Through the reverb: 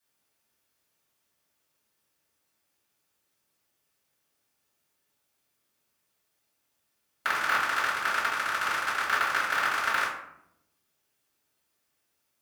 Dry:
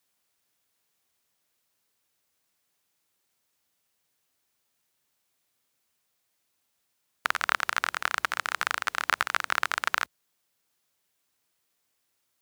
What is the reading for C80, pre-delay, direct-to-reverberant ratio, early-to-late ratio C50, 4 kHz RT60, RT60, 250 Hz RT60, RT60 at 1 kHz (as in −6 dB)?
7.0 dB, 3 ms, −9.5 dB, 3.5 dB, 0.40 s, 0.75 s, 1.1 s, 0.70 s